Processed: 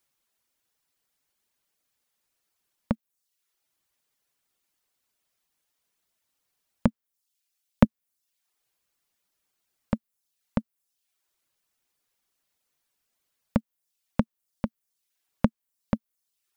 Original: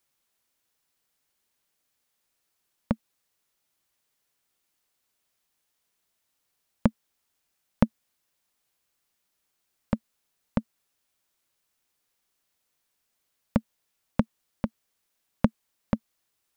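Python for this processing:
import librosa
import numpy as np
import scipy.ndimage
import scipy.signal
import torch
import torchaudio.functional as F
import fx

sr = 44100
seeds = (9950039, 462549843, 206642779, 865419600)

y = fx.dereverb_blind(x, sr, rt60_s=0.6)
y = fx.band_widen(y, sr, depth_pct=40, at=(6.87, 7.85))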